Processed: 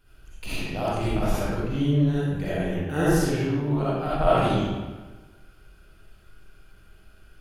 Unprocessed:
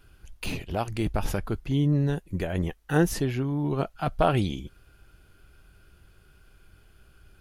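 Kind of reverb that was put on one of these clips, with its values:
comb and all-pass reverb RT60 1.3 s, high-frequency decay 0.75×, pre-delay 20 ms, DRR −10 dB
level −7 dB

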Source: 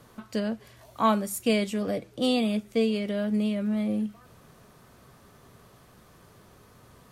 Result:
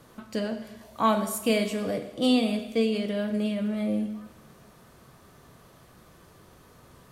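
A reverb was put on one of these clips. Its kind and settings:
coupled-rooms reverb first 0.92 s, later 2.8 s, DRR 6.5 dB

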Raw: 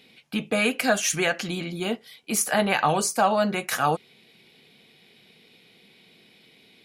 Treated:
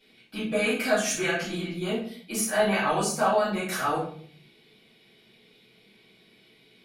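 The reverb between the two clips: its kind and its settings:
rectangular room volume 64 cubic metres, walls mixed, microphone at 2.8 metres
level −14.5 dB

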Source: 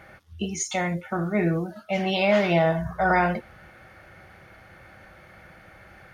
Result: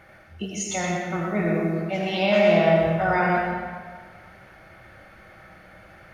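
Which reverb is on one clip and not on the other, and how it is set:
comb and all-pass reverb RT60 1.6 s, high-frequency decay 0.8×, pre-delay 45 ms, DRR −1.5 dB
level −2.5 dB

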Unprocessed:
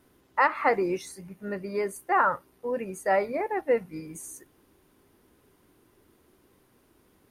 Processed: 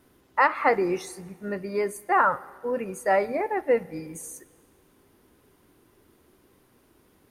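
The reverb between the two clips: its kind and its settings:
dense smooth reverb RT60 1.7 s, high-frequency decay 0.9×, DRR 19 dB
level +2 dB

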